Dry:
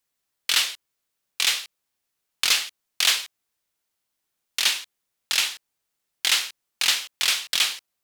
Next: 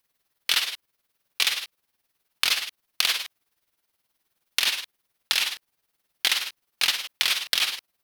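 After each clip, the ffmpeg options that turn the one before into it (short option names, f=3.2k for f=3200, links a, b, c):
-af "tremolo=f=19:d=0.66,acompressor=threshold=-26dB:ratio=12,equalizer=f=7.4k:t=o:w=0.57:g=-7.5,volume=8.5dB"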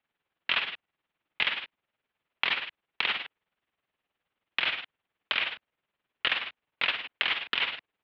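-af "highpass=f=350:t=q:w=0.5412,highpass=f=350:t=q:w=1.307,lowpass=f=3.5k:t=q:w=0.5176,lowpass=f=3.5k:t=q:w=0.7071,lowpass=f=3.5k:t=q:w=1.932,afreqshift=-270,volume=-2dB"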